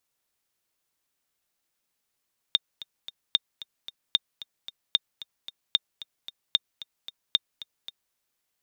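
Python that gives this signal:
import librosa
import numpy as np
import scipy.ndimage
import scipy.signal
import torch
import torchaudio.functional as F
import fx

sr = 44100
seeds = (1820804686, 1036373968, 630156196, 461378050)

y = fx.click_track(sr, bpm=225, beats=3, bars=7, hz=3640.0, accent_db=17.5, level_db=-7.0)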